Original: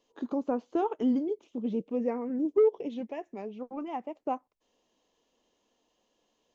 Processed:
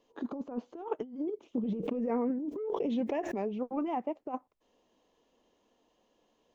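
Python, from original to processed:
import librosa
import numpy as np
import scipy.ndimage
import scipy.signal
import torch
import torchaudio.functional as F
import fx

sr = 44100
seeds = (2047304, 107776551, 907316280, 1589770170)

y = fx.over_compress(x, sr, threshold_db=-33.0, ratio=-0.5)
y = fx.high_shelf(y, sr, hz=2800.0, db=-9.0)
y = fx.pre_swell(y, sr, db_per_s=25.0, at=(1.59, 3.61))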